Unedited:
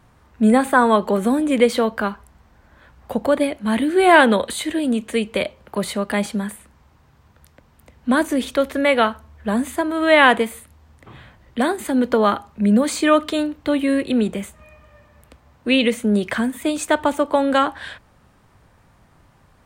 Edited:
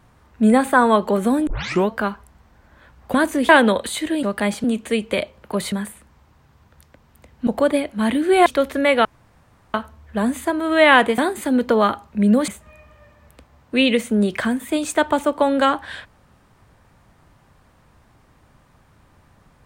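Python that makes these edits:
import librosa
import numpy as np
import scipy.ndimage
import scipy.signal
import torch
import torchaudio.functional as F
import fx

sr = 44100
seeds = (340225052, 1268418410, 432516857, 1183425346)

y = fx.edit(x, sr, fx.tape_start(start_s=1.47, length_s=0.42),
    fx.swap(start_s=3.14, length_s=0.99, other_s=8.11, other_length_s=0.35),
    fx.move(start_s=5.95, length_s=0.41, to_s=4.87),
    fx.insert_room_tone(at_s=9.05, length_s=0.69),
    fx.cut(start_s=10.49, length_s=1.12),
    fx.cut(start_s=12.91, length_s=1.5), tone=tone)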